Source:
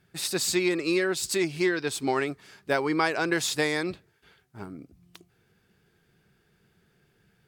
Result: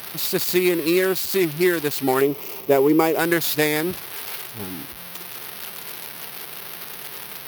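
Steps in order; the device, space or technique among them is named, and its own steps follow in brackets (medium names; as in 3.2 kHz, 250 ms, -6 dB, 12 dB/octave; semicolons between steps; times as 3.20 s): local Wiener filter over 25 samples; budget class-D amplifier (dead-time distortion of 0.067 ms; zero-crossing glitches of -19.5 dBFS); 2.21–3.19 s: fifteen-band graphic EQ 400 Hz +8 dB, 1.6 kHz -11 dB, 4 kHz -8 dB, 10 kHz -8 dB; trim +6.5 dB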